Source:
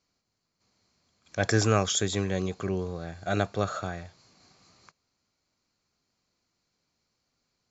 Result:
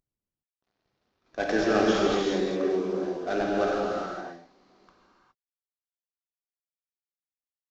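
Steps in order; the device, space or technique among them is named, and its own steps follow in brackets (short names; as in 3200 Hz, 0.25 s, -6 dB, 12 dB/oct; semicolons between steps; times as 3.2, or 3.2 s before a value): Wiener smoothing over 15 samples; early wireless headset (HPF 270 Hz 24 dB/oct; CVSD 32 kbps); low shelf 340 Hz +9 dB; non-linear reverb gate 0.44 s flat, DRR -4 dB; gain -2.5 dB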